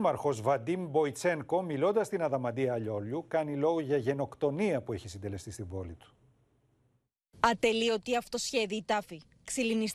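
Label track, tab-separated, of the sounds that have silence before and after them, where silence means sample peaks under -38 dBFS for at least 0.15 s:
7.440000	9.160000	sound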